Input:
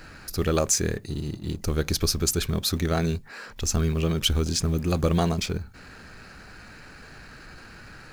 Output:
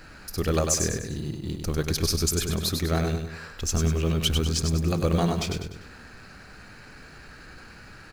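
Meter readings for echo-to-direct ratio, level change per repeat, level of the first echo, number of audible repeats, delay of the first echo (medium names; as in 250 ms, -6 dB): -4.5 dB, -7.5 dB, -5.5 dB, 4, 99 ms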